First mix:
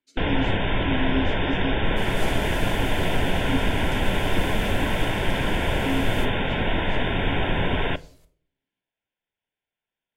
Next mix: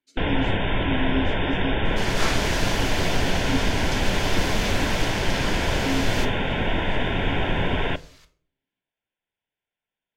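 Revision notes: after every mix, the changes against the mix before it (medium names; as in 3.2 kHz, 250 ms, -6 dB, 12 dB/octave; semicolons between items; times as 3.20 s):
second sound: add high-order bell 2.6 kHz +14 dB 3 oct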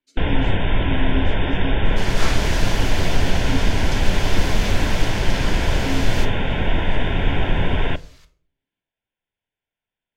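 first sound: add bass shelf 110 Hz +8.5 dB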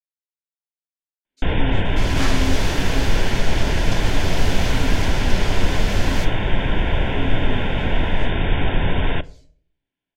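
speech: entry +1.30 s; first sound: entry +1.25 s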